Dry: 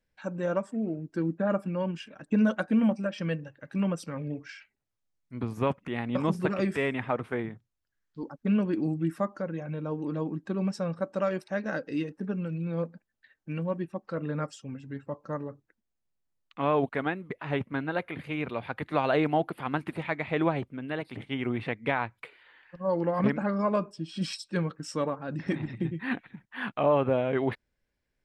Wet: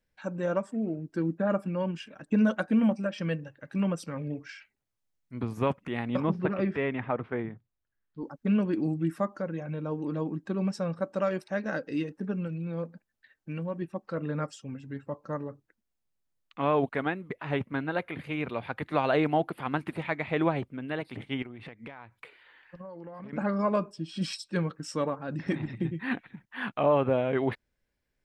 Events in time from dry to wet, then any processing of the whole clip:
0:06.20–0:08.24: high-frequency loss of the air 290 metres
0:12.47–0:13.82: downward compressor 1.5 to 1, threshold −34 dBFS
0:21.42–0:23.33: downward compressor 16 to 1, threshold −39 dBFS

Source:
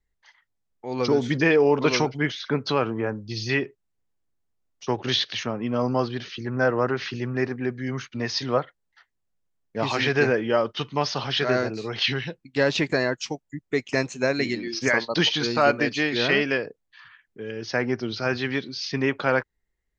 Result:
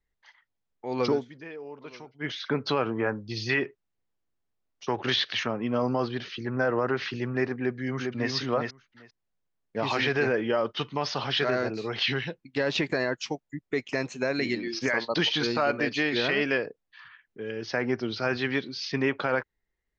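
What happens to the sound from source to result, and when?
0:01.11–0:02.33: duck −21.5 dB, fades 0.14 s
0:02.96–0:05.48: dynamic equaliser 1,500 Hz, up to +5 dB, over −39 dBFS, Q 0.75
0:07.59–0:08.30: delay throw 400 ms, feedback 10%, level −4 dB
whole clip: Bessel low-pass filter 4,600 Hz, order 2; low-shelf EQ 180 Hz −5 dB; brickwall limiter −15.5 dBFS

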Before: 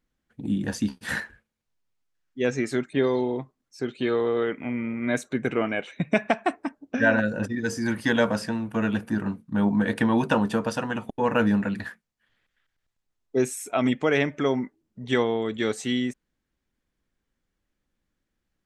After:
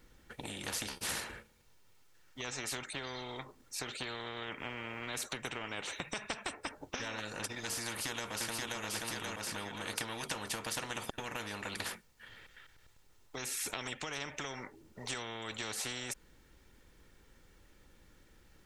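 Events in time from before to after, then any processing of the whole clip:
0:07.87–0:08.82: delay throw 530 ms, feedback 35%, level −2.5 dB
whole clip: comb filter 2.2 ms, depth 36%; downward compressor, threshold −31 dBFS; every bin compressed towards the loudest bin 4 to 1; level +1.5 dB

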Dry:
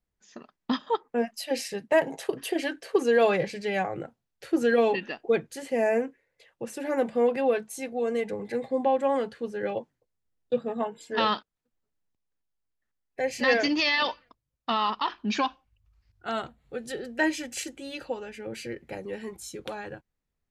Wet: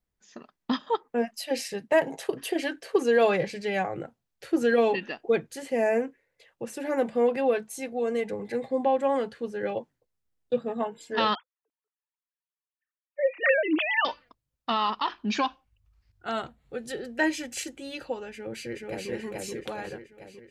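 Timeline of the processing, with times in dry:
0:11.35–0:14.05: three sine waves on the formant tracks
0:18.31–0:19.10: delay throw 430 ms, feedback 55%, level −0.5 dB

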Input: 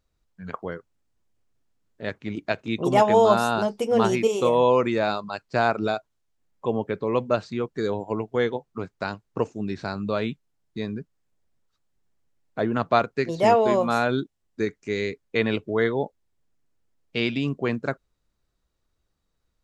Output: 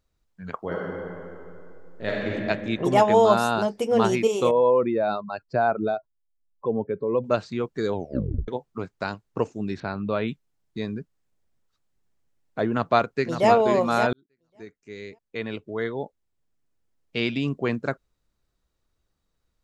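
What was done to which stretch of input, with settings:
0:00.59–0:02.29: thrown reverb, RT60 2.7 s, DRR −5 dB
0:04.51–0:07.24: expanding power law on the bin magnitudes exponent 1.6
0:07.94: tape stop 0.54 s
0:09.80–0:10.28: low-pass filter 3,500 Hz 24 dB per octave
0:12.70–0:13.50: delay throw 560 ms, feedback 20%, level −8 dB
0:14.13–0:17.52: fade in

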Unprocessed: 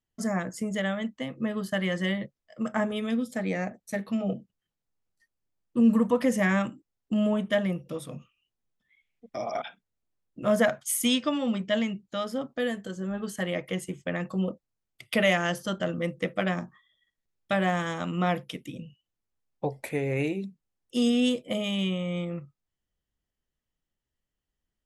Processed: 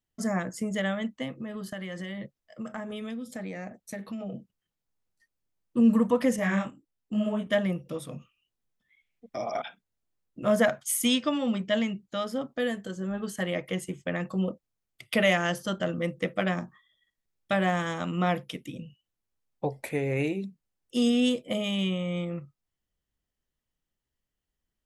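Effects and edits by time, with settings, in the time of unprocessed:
0:01.38–0:04.34: downward compressor, threshold −33 dBFS
0:06.36–0:07.47: micro pitch shift up and down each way 42 cents

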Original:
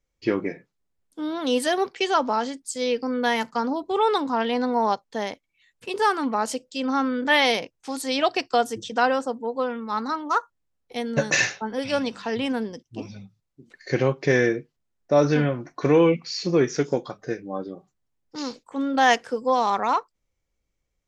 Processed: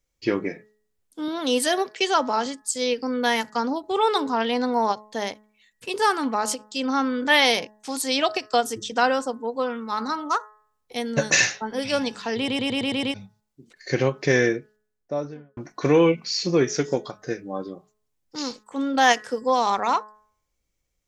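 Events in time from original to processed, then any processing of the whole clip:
0:01.28–0:02.46: high-pass filter 140 Hz
0:12.37: stutter in place 0.11 s, 7 plays
0:14.58–0:15.57: fade out and dull
whole clip: high-shelf EQ 3,900 Hz +7.5 dB; hum removal 212.5 Hz, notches 9; every ending faded ahead of time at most 350 dB per second

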